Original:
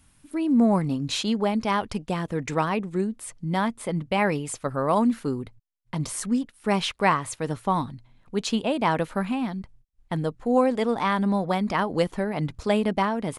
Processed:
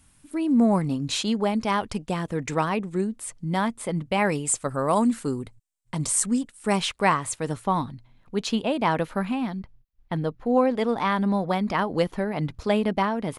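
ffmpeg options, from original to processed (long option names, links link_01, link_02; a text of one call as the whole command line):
ffmpeg -i in.wav -af "asetnsamples=nb_out_samples=441:pad=0,asendcmd='4.25 equalizer g 13;6.77 equalizer g 6;7.64 equalizer g -3.5;9.59 equalizer g -15;10.78 equalizer g -5.5',equalizer=frequency=8100:width_type=o:width=0.61:gain=4" out.wav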